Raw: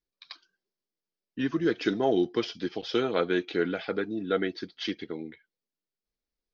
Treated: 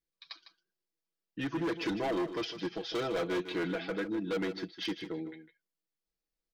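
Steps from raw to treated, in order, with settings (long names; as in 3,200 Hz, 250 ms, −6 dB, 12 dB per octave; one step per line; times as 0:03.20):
comb filter 6.1 ms, depth 67%
gain into a clipping stage and back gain 25.5 dB
single-tap delay 154 ms −11.5 dB
level −4 dB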